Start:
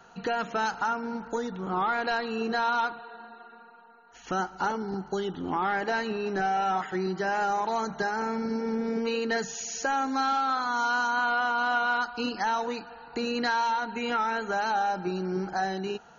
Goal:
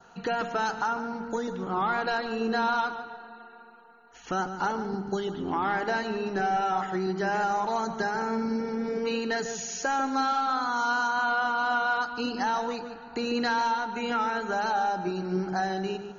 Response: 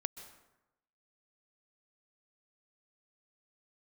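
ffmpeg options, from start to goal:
-filter_complex "[0:a]adynamicequalizer=threshold=0.00562:dfrequency=2300:dqfactor=2:tfrequency=2300:tqfactor=2:attack=5:release=100:ratio=0.375:range=2:mode=cutabove:tftype=bell,asplit=2[a][b];[1:a]atrim=start_sample=2205,lowshelf=f=320:g=11.5,adelay=147[c];[b][c]afir=irnorm=-1:irlink=0,volume=-11.5dB[d];[a][d]amix=inputs=2:normalize=0"

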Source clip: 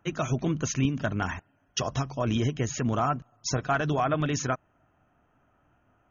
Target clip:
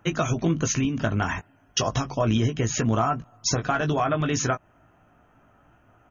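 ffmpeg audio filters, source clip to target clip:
-filter_complex "[0:a]acompressor=threshold=-28dB:ratio=6,asplit=2[a][b];[b]adelay=18,volume=-7dB[c];[a][c]amix=inputs=2:normalize=0,volume=7.5dB"

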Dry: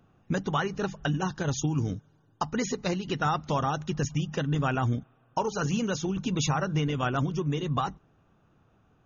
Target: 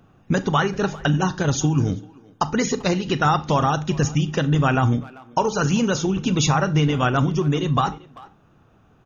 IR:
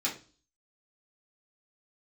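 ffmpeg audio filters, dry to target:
-filter_complex "[0:a]asplit=2[a][b];[b]adelay=390,highpass=300,lowpass=3.4k,asoftclip=type=hard:threshold=-23.5dB,volume=-20dB[c];[a][c]amix=inputs=2:normalize=0,asplit=2[d][e];[1:a]atrim=start_sample=2205,adelay=32[f];[e][f]afir=irnorm=-1:irlink=0,volume=-20dB[g];[d][g]amix=inputs=2:normalize=0,volume=8dB"

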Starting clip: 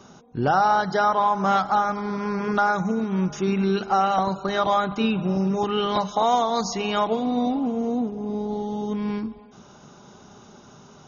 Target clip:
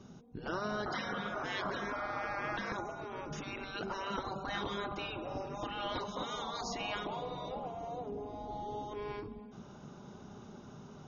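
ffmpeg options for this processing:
-af "asetnsamples=n=441:p=0,asendcmd='0.86 equalizer g 5;2.72 equalizer g -5',equalizer=f=960:t=o:w=2.7:g=-12,afftfilt=real='re*lt(hypot(re,im),0.141)':imag='im*lt(hypot(re,im),0.141)':win_size=1024:overlap=0.75,lowpass=f=1.7k:p=1"

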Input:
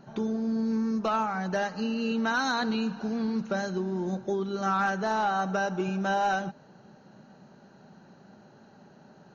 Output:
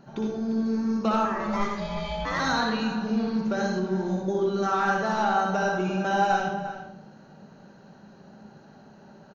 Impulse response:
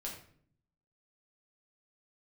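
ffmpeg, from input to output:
-filter_complex "[0:a]asettb=1/sr,asplit=3[a][b][c];[a]atrim=end=1.254[d];[b]atrim=start=1.25:end=2.4,asetpts=PTS-STARTPTS,afade=t=in:d=0.004:c=qsin,afade=t=out:st=1.146:d=0.004:c=qsin,aeval=exprs='val(0)*sin(2*PI*400*n/s)':c=same[e];[c]atrim=start=2.396[f];[d][e]acrossfade=d=0.004:c1=hsin:c2=qsin[g];[g][f]acrossfade=d=0.004:c1=qsin:c2=hsin,asplit=2[h][i];[i]adelay=349.9,volume=-11dB,highshelf=f=4k:g=-7.87[j];[h][j]amix=inputs=2:normalize=0,asplit=2[k][l];[1:a]atrim=start_sample=2205,adelay=60[m];[l][m]afir=irnorm=-1:irlink=0,volume=0.5dB[n];[k][n]amix=inputs=2:normalize=0"

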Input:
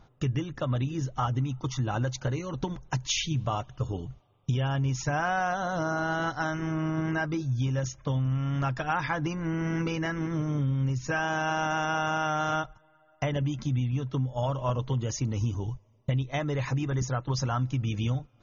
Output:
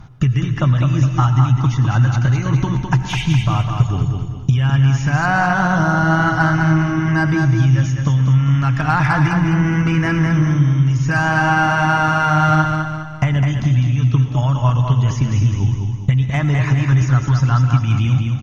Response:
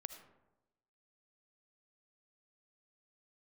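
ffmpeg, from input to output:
-filter_complex "[0:a]aemphasis=mode=reproduction:type=cd,acrossover=split=2700[a][b];[b]acompressor=threshold=-54dB:ratio=4:attack=1:release=60[c];[a][c]amix=inputs=2:normalize=0,equalizer=f=125:t=o:w=1:g=8,equalizer=f=500:t=o:w=1:g=-11,equalizer=f=4k:t=o:w=1:g=-6,acrossover=split=1500[d][e];[d]acompressor=threshold=-28dB:ratio=6[f];[e]asoftclip=type=tanh:threshold=-35.5dB[g];[f][g]amix=inputs=2:normalize=0,aecho=1:1:206|412|618|824|1030:0.562|0.236|0.0992|0.0417|0.0175,asplit=2[h][i];[1:a]atrim=start_sample=2205,asetrate=30870,aresample=44100,highshelf=f=2.9k:g=10.5[j];[i][j]afir=irnorm=-1:irlink=0,volume=7.5dB[k];[h][k]amix=inputs=2:normalize=0,volume=6dB"

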